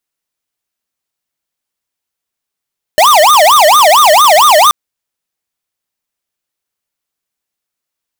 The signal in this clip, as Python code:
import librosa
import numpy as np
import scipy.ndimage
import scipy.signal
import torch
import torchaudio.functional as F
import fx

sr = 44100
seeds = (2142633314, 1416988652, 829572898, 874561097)

y = fx.siren(sr, length_s=1.73, kind='wail', low_hz=596.0, high_hz=1230.0, per_s=4.4, wave='square', level_db=-5.5)